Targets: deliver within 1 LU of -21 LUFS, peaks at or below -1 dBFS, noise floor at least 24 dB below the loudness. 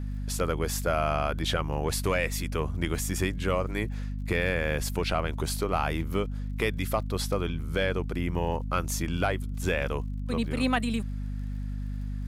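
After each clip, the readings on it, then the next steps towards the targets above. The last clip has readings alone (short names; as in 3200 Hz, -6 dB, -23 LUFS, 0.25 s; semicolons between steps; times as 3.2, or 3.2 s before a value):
ticks 44/s; hum 50 Hz; harmonics up to 250 Hz; hum level -30 dBFS; loudness -29.5 LUFS; peak -12.5 dBFS; loudness target -21.0 LUFS
-> de-click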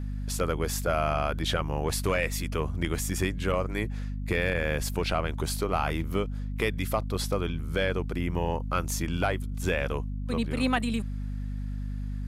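ticks 0.16/s; hum 50 Hz; harmonics up to 250 Hz; hum level -30 dBFS
-> de-hum 50 Hz, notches 5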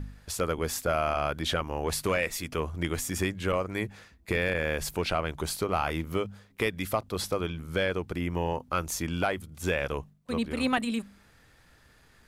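hum none; loudness -30.5 LUFS; peak -13.5 dBFS; loudness target -21.0 LUFS
-> gain +9.5 dB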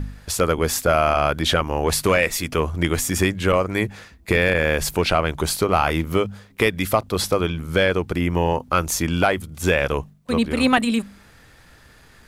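loudness -21.0 LUFS; peak -4.0 dBFS; noise floor -50 dBFS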